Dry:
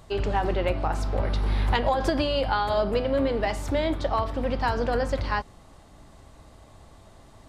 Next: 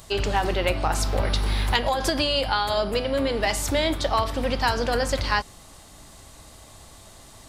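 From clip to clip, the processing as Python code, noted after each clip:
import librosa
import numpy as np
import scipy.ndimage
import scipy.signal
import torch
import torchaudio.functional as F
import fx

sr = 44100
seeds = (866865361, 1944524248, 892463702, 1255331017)

y = fx.high_shelf(x, sr, hz=6800.0, db=6.5)
y = fx.rider(y, sr, range_db=10, speed_s=0.5)
y = fx.high_shelf(y, sr, hz=2100.0, db=11.0)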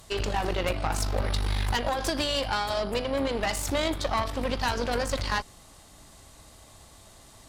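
y = fx.tube_stage(x, sr, drive_db=19.0, bias=0.75)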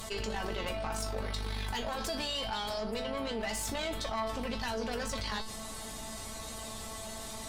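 y = fx.comb_fb(x, sr, f0_hz=220.0, decay_s=0.19, harmonics='all', damping=0.0, mix_pct=90)
y = fx.env_flatten(y, sr, amount_pct=70)
y = F.gain(torch.from_numpy(y), -3.5).numpy()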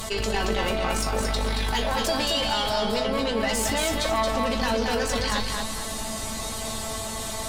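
y = fx.echo_feedback(x, sr, ms=225, feedback_pct=34, wet_db=-4)
y = F.gain(torch.from_numpy(y), 9.0).numpy()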